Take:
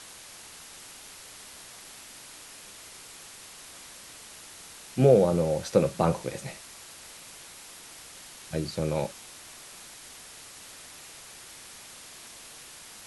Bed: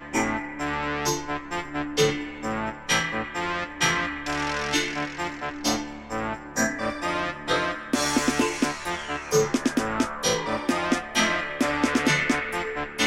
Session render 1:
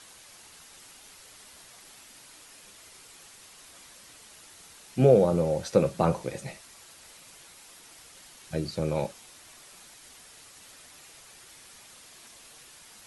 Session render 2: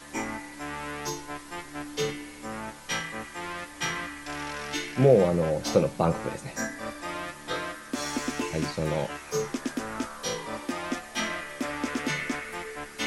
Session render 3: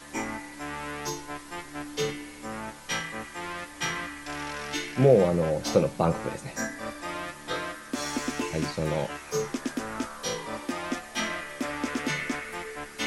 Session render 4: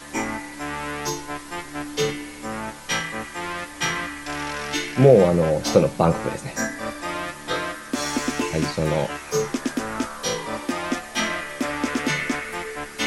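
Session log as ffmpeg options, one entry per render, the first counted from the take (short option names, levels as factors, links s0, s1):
-af "afftdn=nr=6:nf=-47"
-filter_complex "[1:a]volume=0.398[s0];[0:a][s0]amix=inputs=2:normalize=0"
-af anull
-af "volume=2,alimiter=limit=0.794:level=0:latency=1"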